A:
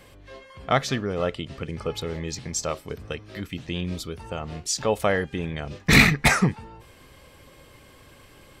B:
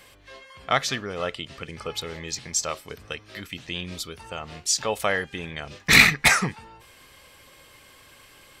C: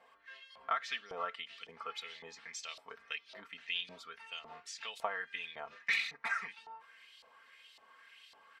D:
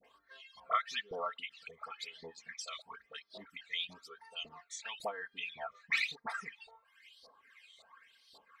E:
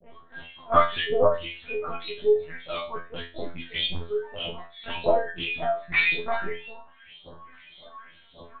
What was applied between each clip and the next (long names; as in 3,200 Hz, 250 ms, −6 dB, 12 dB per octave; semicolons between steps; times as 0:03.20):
tilt shelving filter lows −6 dB, about 740 Hz; level −2 dB
downward compressor 16 to 1, threshold −24 dBFS, peak gain reduction 16.5 dB; comb filter 4.4 ms, depth 71%; auto-filter band-pass saw up 1.8 Hz 730–4,300 Hz; level −3 dB
all-pass dispersion highs, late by 45 ms, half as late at 1,100 Hz; reverb reduction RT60 1.3 s; all-pass phaser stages 12, 1 Hz, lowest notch 270–2,700 Hz; level +4.5 dB
convolution reverb, pre-delay 3 ms, DRR −17.5 dB; linear-prediction vocoder at 8 kHz pitch kept; tuned comb filter 85 Hz, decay 0.31 s, harmonics all, mix 100%; level +5.5 dB